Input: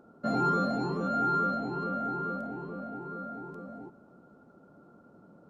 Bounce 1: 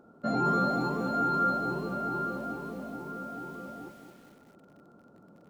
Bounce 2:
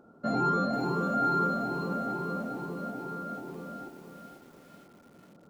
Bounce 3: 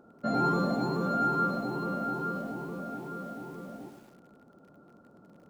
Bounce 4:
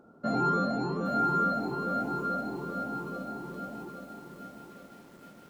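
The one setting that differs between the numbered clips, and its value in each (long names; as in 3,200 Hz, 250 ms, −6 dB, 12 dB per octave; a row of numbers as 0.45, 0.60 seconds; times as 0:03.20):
feedback echo at a low word length, delay time: 218, 492, 105, 819 milliseconds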